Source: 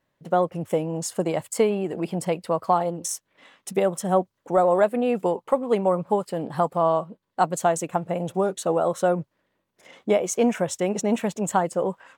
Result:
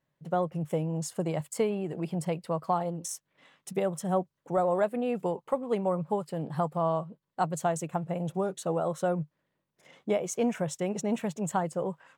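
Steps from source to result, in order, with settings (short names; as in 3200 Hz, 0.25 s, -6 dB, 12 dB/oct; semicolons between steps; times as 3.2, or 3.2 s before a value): bell 150 Hz +10.5 dB 0.41 oct; gain -7.5 dB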